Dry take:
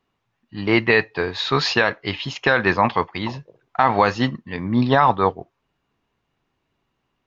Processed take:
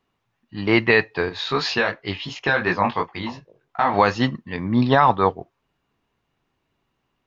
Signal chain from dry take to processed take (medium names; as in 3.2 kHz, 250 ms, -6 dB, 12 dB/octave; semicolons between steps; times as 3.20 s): 1.29–3.94 s: chorus 2.8 Hz, delay 17 ms, depth 4.6 ms